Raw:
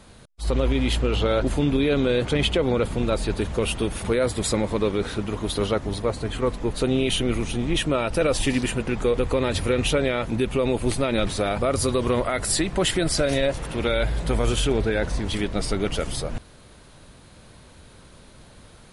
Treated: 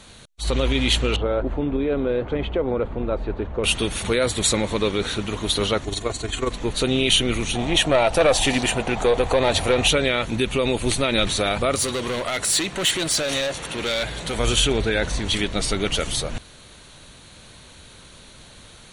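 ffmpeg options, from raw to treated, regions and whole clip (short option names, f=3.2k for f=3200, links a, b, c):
-filter_complex "[0:a]asettb=1/sr,asplit=3[a][b][c];[a]atrim=end=1.164[d];[b]atrim=start=1.16:end=3.64,asetpts=PTS-STARTPTS,afade=t=in:d=0.004:c=qsin,afade=t=out:st=2.476:d=0.004:c=qsin,lowpass=1k,equalizer=f=150:w=1.1:g=-7[e];[c]atrim=start=3.636[f];[d][e]acrossfade=d=0.004:c1=hsin:c2=qsin[g];[g][f]acrossfade=d=0.004:c1=qsin:c2=hsin,asettb=1/sr,asplit=3[h][i][j];[h]atrim=end=5.844[k];[i]atrim=start=5.84:end=6.51,asetpts=PTS-STARTPTS,afade=t=in:d=0.004:c=qsin,afade=t=out:st=0.666:d=0.004:c=qsin,equalizer=f=7.2k:w=3.3:g=8.5,aecho=1:1:2.8:0.42,atrim=end_sample=29547,tremolo=f=22:d=0.571[l];[j]atrim=start=6.506[m];[k][l]acrossfade=d=0.004:c1=hsin:c2=qsin[n];[n][m]acrossfade=d=0.004:c1=qsin:c2=hsin,asettb=1/sr,asplit=3[o][p][q];[o]atrim=end=7.554[r];[p]atrim=start=7.55:end=9.88,asetpts=PTS-STARTPTS,afade=t=in:d=0.004:c=qsin,afade=t=out:st=2.326:d=0.004:c=qsin,equalizer=f=730:w=1.8:g=14.5,aeval=exprs='(tanh(3.16*val(0)+0.3)-tanh(0.3))/3.16':c=same[s];[q]atrim=start=9.876[t];[r][s]acrossfade=d=0.004:c1=hsin:c2=qsin[u];[u][t]acrossfade=d=0.004:c1=qsin:c2=hsin,asettb=1/sr,asplit=3[v][w][x];[v]atrim=end=11.754[y];[w]atrim=start=11.75:end=14.39,asetpts=PTS-STARTPTS,afade=t=in:d=0.004:c=qsin,afade=t=out:st=2.636:d=0.004:c=qsin,highpass=f=180:p=1,asoftclip=type=hard:threshold=-23.5dB[z];[x]atrim=start=14.386[aa];[y][z]acrossfade=d=0.004:c1=hsin:c2=qsin[ab];[ab][aa]acrossfade=d=0.004:c1=qsin:c2=hsin,equalizer=f=4.7k:t=o:w=2.5:g=10.5,bandreject=f=5k:w=5.4"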